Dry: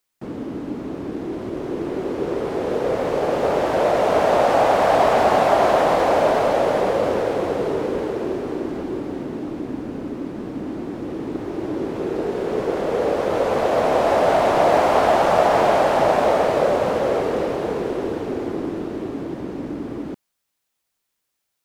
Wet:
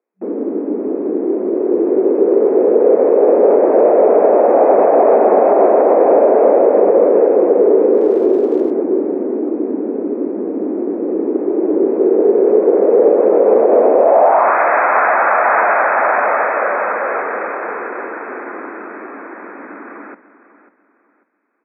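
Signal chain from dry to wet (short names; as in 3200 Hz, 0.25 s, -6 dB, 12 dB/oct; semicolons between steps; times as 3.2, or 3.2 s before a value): feedback echo 0.544 s, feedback 30%, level -15 dB; in parallel at -11 dB: hard clip -18 dBFS, distortion -9 dB; on the sum: FFT band-pass 190–2600 Hz; 7.96–8.7 crackle 450/s -22 dBFS; band-pass sweep 420 Hz -> 1500 Hz, 13.94–14.58; maximiser +13.5 dB; gain -1 dB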